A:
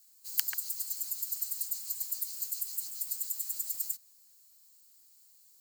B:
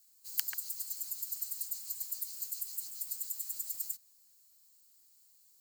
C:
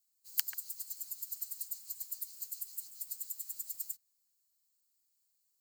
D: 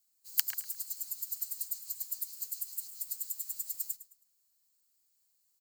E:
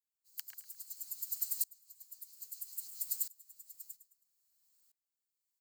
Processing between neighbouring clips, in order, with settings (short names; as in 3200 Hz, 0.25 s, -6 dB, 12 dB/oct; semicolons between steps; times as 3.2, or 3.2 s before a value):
low shelf 82 Hz +6.5 dB; gain -3.5 dB
upward expander 1.5:1, over -57 dBFS; gain +1 dB
feedback echo 0.107 s, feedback 32%, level -15 dB; gain +3.5 dB
dB-ramp tremolo swelling 0.61 Hz, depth 26 dB; gain +4 dB